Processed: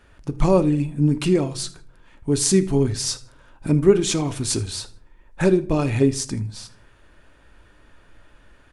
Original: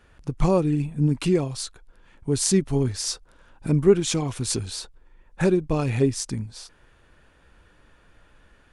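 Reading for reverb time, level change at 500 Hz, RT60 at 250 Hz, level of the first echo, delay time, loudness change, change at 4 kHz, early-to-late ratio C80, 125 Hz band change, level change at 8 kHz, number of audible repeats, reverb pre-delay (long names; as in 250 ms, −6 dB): 0.50 s, +3.0 dB, 0.80 s, −21.0 dB, 79 ms, +2.5 dB, +2.5 dB, 22.5 dB, +2.0 dB, +3.0 dB, 2, 3 ms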